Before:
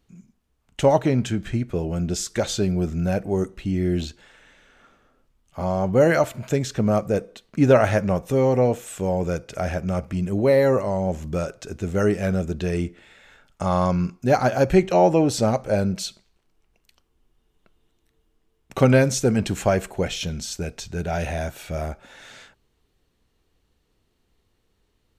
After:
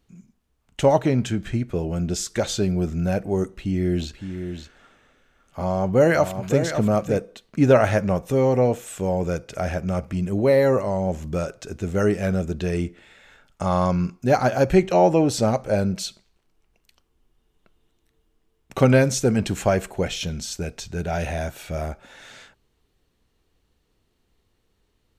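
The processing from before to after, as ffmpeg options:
ffmpeg -i in.wav -filter_complex "[0:a]asettb=1/sr,asplit=3[link_01][link_02][link_03];[link_01]atrim=end=3.544[link_04];[link_02]atrim=start=3.54:end=7.17,asetpts=PTS-STARTPTS,afade=type=in:duration=0.004:curve=qsin,afade=type=out:start_time=3.626:duration=0.004:curve=qsin,aecho=1:1:561:0.376,atrim=end_sample=160083[link_05];[link_03]atrim=start=7.166[link_06];[link_04][link_05]acrossfade=duration=0.004:curve1=hsin:curve2=qsin[link_07];[link_07][link_06]acrossfade=duration=0.004:curve1=qsin:curve2=hsin" out.wav

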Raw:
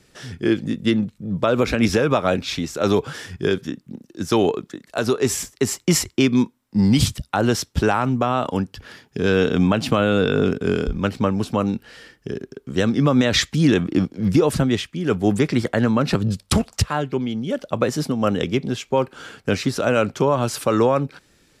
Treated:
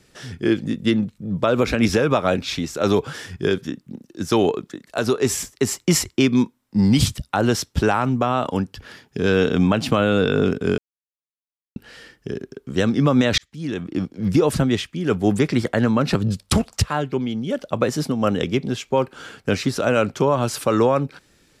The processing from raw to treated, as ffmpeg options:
ffmpeg -i in.wav -filter_complex "[0:a]asplit=4[link_01][link_02][link_03][link_04];[link_01]atrim=end=10.78,asetpts=PTS-STARTPTS,afade=type=out:start_time=10.776:duration=0.004:curve=hsin[link_05];[link_02]atrim=start=10.78:end=11.76,asetpts=PTS-STARTPTS,volume=0[link_06];[link_03]atrim=start=11.76:end=13.38,asetpts=PTS-STARTPTS,afade=type=in:duration=0.004:curve=hsin,afade=type=out:start_time=1.616:duration=0.004:curve=hsin[link_07];[link_04]atrim=start=13.38,asetpts=PTS-STARTPTS,afade=type=in:duration=1.08[link_08];[link_05][link_06][link_07][link_08]concat=n=4:v=0:a=1" out.wav

